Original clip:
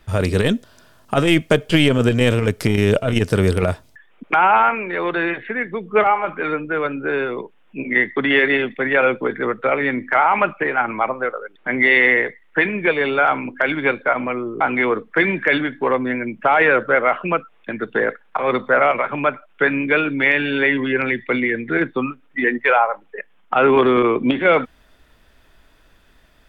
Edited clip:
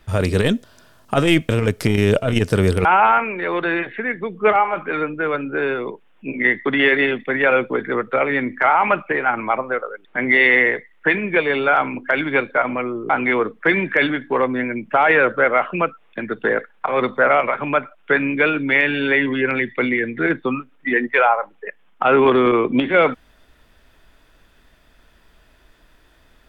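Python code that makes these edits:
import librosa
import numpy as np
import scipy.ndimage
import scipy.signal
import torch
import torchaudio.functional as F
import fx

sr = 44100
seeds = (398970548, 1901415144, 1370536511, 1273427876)

y = fx.edit(x, sr, fx.cut(start_s=1.49, length_s=0.8),
    fx.cut(start_s=3.65, length_s=0.71), tone=tone)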